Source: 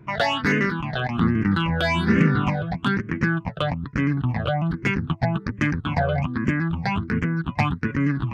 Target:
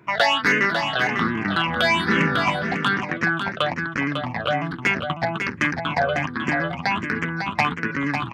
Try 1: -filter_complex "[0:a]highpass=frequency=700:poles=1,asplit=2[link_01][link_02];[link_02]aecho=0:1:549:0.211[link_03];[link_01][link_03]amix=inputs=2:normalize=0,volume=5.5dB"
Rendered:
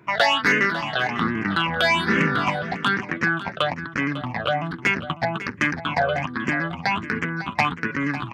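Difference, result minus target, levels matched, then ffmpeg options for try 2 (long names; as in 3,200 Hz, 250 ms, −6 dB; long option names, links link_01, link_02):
echo-to-direct −7 dB
-filter_complex "[0:a]highpass=frequency=700:poles=1,asplit=2[link_01][link_02];[link_02]aecho=0:1:549:0.473[link_03];[link_01][link_03]amix=inputs=2:normalize=0,volume=5.5dB"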